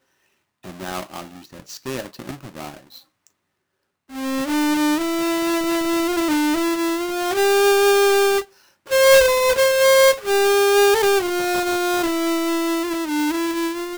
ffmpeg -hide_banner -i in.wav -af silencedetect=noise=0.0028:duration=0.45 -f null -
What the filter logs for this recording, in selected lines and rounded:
silence_start: 0.00
silence_end: 0.63 | silence_duration: 0.63
silence_start: 3.27
silence_end: 4.09 | silence_duration: 0.82